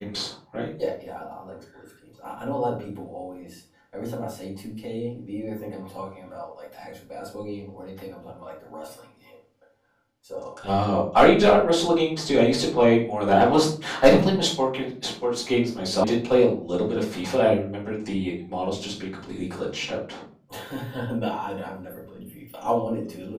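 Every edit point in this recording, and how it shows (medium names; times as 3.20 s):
16.04 s: sound stops dead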